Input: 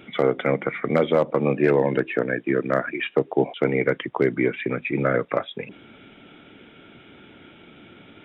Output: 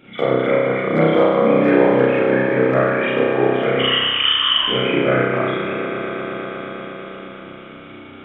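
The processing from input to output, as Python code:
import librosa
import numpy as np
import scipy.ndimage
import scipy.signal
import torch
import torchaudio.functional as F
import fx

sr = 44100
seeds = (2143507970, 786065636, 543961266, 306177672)

y = fx.echo_swell(x, sr, ms=119, loudest=5, wet_db=-13.0)
y = fx.freq_invert(y, sr, carrier_hz=3400, at=(3.79, 4.68))
y = fx.rev_spring(y, sr, rt60_s=1.2, pass_ms=(31,), chirp_ms=20, drr_db=-9.5)
y = y * librosa.db_to_amplitude(-4.5)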